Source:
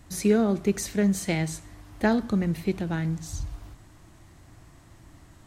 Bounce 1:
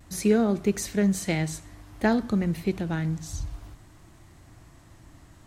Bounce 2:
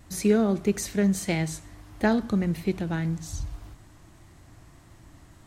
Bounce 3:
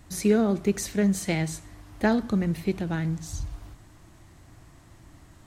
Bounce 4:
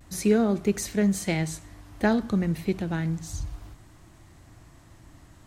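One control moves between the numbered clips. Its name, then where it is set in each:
vibrato, rate: 0.55 Hz, 1.7 Hz, 16 Hz, 0.35 Hz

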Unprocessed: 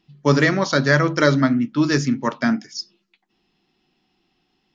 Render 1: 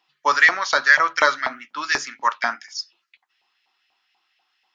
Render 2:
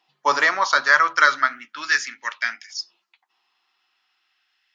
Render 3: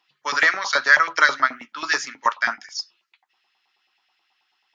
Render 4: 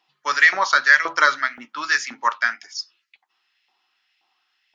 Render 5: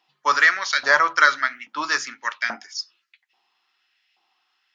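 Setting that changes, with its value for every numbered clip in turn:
LFO high-pass, rate: 4.1 Hz, 0.37 Hz, 9.3 Hz, 1.9 Hz, 1.2 Hz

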